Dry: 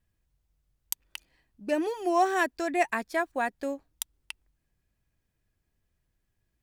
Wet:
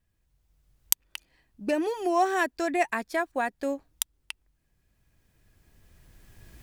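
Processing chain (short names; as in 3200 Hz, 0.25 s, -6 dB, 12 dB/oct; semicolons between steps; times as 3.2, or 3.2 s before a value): recorder AGC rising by 12 dB/s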